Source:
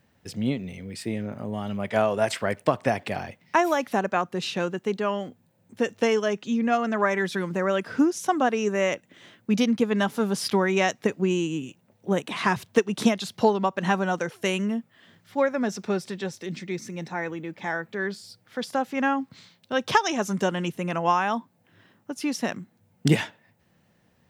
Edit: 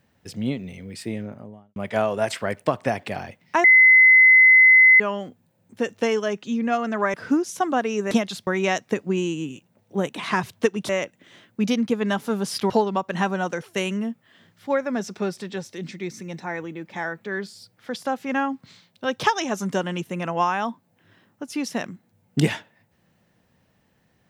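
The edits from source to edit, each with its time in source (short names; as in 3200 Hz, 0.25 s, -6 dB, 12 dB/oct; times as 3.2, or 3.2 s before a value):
1.1–1.76 studio fade out
3.64–5 bleep 2040 Hz -9 dBFS
7.14–7.82 cut
8.79–10.6 swap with 13.02–13.38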